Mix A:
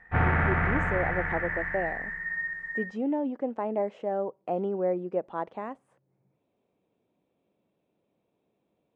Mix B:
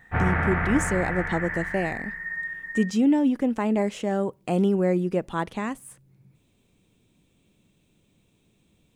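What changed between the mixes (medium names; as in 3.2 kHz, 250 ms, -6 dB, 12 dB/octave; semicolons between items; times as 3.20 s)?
speech: remove band-pass filter 650 Hz, Q 1.5; master: remove distance through air 53 m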